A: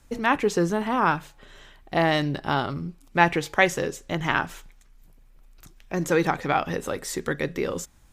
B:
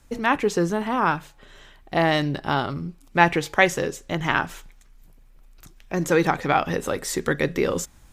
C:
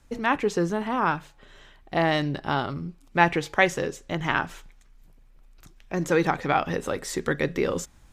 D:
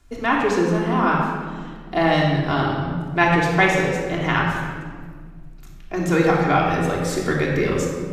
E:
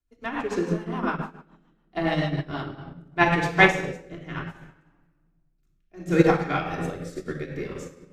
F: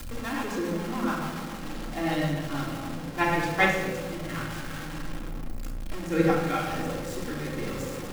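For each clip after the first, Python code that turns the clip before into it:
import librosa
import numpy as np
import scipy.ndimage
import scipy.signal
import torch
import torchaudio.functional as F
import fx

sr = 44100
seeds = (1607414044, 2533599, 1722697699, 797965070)

y1 = fx.rider(x, sr, range_db=3, speed_s=2.0)
y1 = y1 * librosa.db_to_amplitude(2.0)
y2 = fx.high_shelf(y1, sr, hz=9800.0, db=-8.5)
y2 = y2 * librosa.db_to_amplitude(-2.5)
y3 = fx.room_shoebox(y2, sr, seeds[0], volume_m3=2300.0, walls='mixed', distance_m=3.2)
y4 = fx.rotary_switch(y3, sr, hz=7.0, then_hz=0.65, switch_at_s=2.25)
y4 = fx.upward_expand(y4, sr, threshold_db=-34.0, expansion=2.5)
y4 = y4 * librosa.db_to_amplitude(3.0)
y5 = y4 + 0.5 * 10.0 ** (-25.5 / 20.0) * np.sign(y4)
y5 = fx.room_shoebox(y5, sr, seeds[1], volume_m3=2100.0, walls='furnished', distance_m=2.2)
y5 = y5 * librosa.db_to_amplitude(-7.5)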